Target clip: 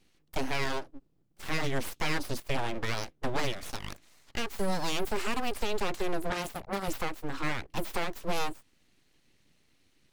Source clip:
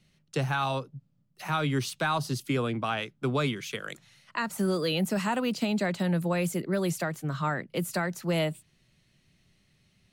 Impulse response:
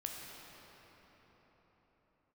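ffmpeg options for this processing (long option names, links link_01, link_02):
-filter_complex "[0:a]aeval=exprs='abs(val(0))':channel_layout=same,asettb=1/sr,asplit=3[link_01][link_02][link_03];[link_01]atrim=end=6.304[link_04];[link_02]atrim=start=6.3:end=6.88,asetpts=PTS-STARTPTS,afade=type=in:duration=0.004:curve=qsin,afade=type=out:start_time=0.576:duration=0.004:curve=qsin,aeval=exprs='0.126*(cos(1*acos(clip(val(0)/0.126,-1,1)))-cos(1*PI/2))+0.0447*(cos(3*acos(clip(val(0)/0.126,-1,1)))-cos(3*PI/2))+0.00224*(cos(5*acos(clip(val(0)/0.126,-1,1)))-cos(5*PI/2))+0.0126*(cos(8*acos(clip(val(0)/0.126,-1,1)))-cos(8*PI/2))':channel_layout=same[link_05];[link_03]atrim=start=6.876[link_06];[link_04][link_05]acrossfade=duration=0.004:curve1=hsin:curve2=qsin[link_07];[link_07][link_06]acrossfade=duration=0.004:curve1=qsin:curve2=hsin"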